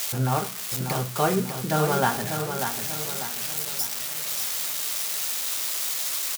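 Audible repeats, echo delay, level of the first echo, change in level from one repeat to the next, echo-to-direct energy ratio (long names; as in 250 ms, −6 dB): 5, 592 ms, −7.0 dB, −7.0 dB, −6.0 dB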